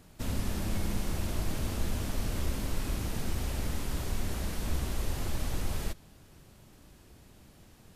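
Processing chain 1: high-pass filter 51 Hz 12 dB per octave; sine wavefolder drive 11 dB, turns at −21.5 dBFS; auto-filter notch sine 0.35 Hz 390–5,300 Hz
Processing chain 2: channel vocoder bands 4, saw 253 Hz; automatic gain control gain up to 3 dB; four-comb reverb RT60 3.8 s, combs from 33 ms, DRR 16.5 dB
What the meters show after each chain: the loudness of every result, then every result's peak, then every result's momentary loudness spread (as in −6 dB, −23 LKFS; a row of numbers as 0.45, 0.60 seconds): −26.5, −37.0 LKFS; −18.0, −24.0 dBFS; 17, 21 LU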